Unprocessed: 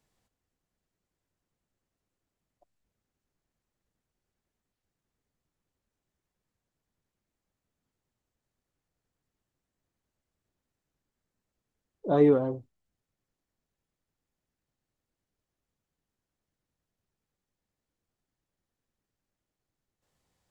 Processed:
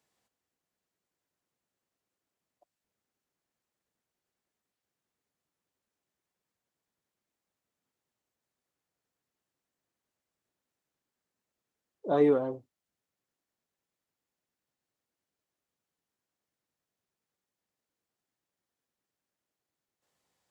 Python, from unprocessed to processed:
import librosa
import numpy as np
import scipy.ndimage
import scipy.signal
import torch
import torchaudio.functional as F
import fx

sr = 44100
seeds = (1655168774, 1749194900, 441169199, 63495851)

y = fx.highpass(x, sr, hz=350.0, slope=6)